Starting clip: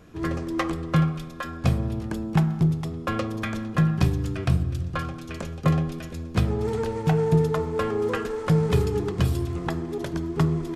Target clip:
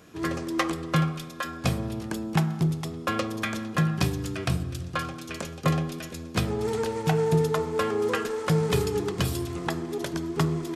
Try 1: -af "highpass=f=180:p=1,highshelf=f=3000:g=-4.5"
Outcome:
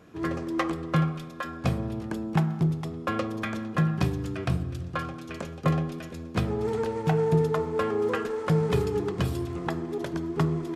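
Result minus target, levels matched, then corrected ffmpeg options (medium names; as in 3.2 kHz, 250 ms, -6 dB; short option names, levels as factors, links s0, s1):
8 kHz band -9.5 dB
-af "highpass=f=180:p=1,highshelf=f=3000:g=7"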